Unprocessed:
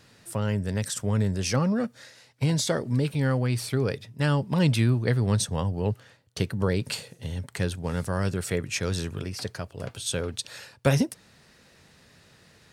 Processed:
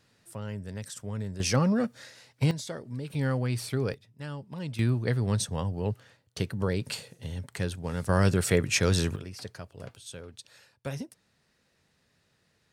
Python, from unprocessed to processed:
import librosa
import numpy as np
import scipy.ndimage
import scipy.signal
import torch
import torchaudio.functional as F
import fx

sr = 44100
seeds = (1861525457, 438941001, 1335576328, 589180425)

y = fx.gain(x, sr, db=fx.steps((0.0, -10.0), (1.4, 0.0), (2.51, -11.5), (3.1, -3.5), (3.94, -14.5), (4.79, -3.5), (8.09, 4.0), (9.16, -7.5), (9.95, -14.0)))